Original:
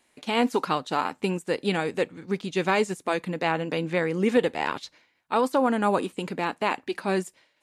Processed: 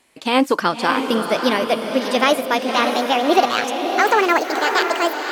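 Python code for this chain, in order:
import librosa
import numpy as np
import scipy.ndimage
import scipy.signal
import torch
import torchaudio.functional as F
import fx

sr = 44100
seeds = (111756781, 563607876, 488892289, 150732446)

y = fx.speed_glide(x, sr, from_pct=104, to_pct=183)
y = fx.echo_diffused(y, sr, ms=595, feedback_pct=46, wet_db=-5.5)
y = F.gain(torch.from_numpy(y), 7.0).numpy()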